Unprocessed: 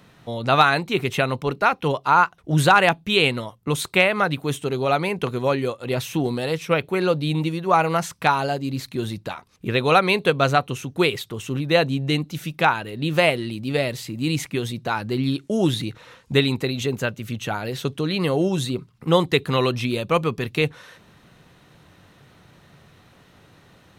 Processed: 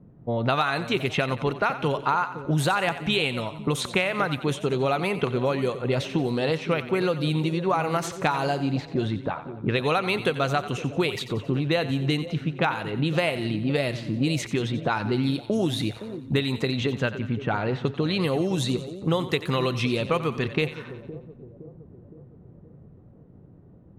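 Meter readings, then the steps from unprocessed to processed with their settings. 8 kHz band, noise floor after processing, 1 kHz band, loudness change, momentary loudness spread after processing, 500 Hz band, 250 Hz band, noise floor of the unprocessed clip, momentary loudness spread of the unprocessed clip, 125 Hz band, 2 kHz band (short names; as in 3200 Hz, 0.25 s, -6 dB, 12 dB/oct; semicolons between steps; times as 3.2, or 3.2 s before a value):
-4.5 dB, -50 dBFS, -6.0 dB, -4.0 dB, 5 LU, -3.5 dB, -1.5 dB, -54 dBFS, 10 LU, -1.5 dB, -5.5 dB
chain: low-pass opened by the level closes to 320 Hz, open at -18 dBFS; compressor, threshold -25 dBFS, peak gain reduction 14 dB; on a send: split-band echo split 600 Hz, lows 0.515 s, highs 90 ms, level -12.5 dB; on the sum: gain +4 dB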